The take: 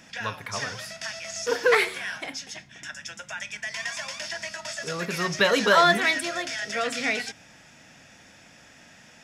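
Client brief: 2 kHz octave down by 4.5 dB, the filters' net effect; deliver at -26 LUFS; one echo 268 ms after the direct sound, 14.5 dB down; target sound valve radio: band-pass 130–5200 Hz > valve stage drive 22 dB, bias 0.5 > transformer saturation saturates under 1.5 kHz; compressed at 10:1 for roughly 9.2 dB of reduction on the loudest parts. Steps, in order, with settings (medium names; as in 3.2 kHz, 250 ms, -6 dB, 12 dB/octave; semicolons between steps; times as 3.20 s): peaking EQ 2 kHz -5.5 dB; compression 10:1, threshold -25 dBFS; band-pass 130–5200 Hz; delay 268 ms -14.5 dB; valve stage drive 22 dB, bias 0.5; transformer saturation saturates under 1.5 kHz; trim +12.5 dB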